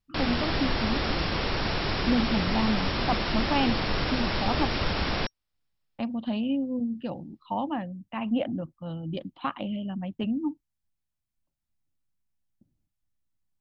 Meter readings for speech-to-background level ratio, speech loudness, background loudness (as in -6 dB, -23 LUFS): -2.5 dB, -31.0 LUFS, -28.5 LUFS